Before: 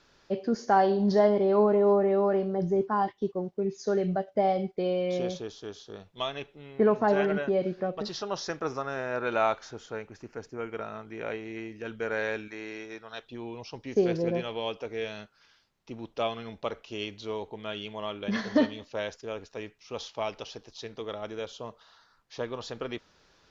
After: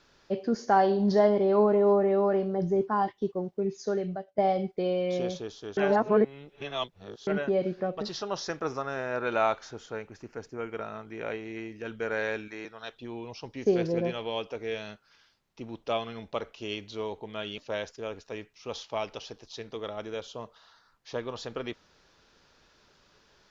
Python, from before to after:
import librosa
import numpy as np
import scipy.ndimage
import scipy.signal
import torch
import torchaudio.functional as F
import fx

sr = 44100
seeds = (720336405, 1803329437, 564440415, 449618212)

y = fx.edit(x, sr, fx.fade_out_to(start_s=3.76, length_s=0.62, floor_db=-15.5),
    fx.reverse_span(start_s=5.77, length_s=1.5),
    fx.cut(start_s=12.65, length_s=0.3),
    fx.cut(start_s=17.88, length_s=0.95), tone=tone)